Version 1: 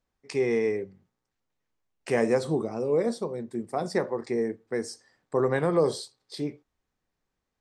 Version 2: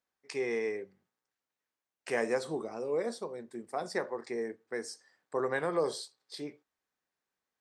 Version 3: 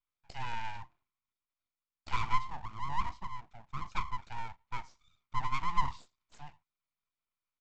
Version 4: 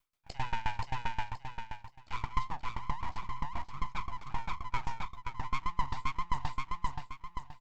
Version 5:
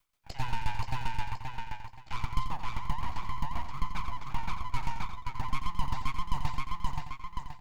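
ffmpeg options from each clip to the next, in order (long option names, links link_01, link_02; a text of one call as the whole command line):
ffmpeg -i in.wav -af "highpass=frequency=540:poles=1,equalizer=frequency=1600:width=3.4:gain=3,volume=-3.5dB" out.wav
ffmpeg -i in.wav -filter_complex "[0:a]asplit=3[link_01][link_02][link_03];[link_01]bandpass=frequency=530:width_type=q:width=8,volume=0dB[link_04];[link_02]bandpass=frequency=1840:width_type=q:width=8,volume=-6dB[link_05];[link_03]bandpass=frequency=2480:width_type=q:width=8,volume=-9dB[link_06];[link_04][link_05][link_06]amix=inputs=3:normalize=0,aresample=16000,aeval=exprs='abs(val(0))':channel_layout=same,aresample=44100,volume=8dB" out.wav
ffmpeg -i in.wav -af "aecho=1:1:526|1052|1578|2104:0.596|0.208|0.073|0.0255,areverse,acompressor=threshold=-36dB:ratio=10,areverse,aeval=exprs='val(0)*pow(10,-21*if(lt(mod(7.6*n/s,1),2*abs(7.6)/1000),1-mod(7.6*n/s,1)/(2*abs(7.6)/1000),(mod(7.6*n/s,1)-2*abs(7.6)/1000)/(1-2*abs(7.6)/1000))/20)':channel_layout=same,volume=14dB" out.wav
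ffmpeg -i in.wav -filter_complex "[0:a]acrossover=split=300[link_01][link_02];[link_01]acrusher=samples=20:mix=1:aa=0.000001[link_03];[link_02]asoftclip=type=tanh:threshold=-38dB[link_04];[link_03][link_04]amix=inputs=2:normalize=0,aecho=1:1:88:0.355,volume=4.5dB" out.wav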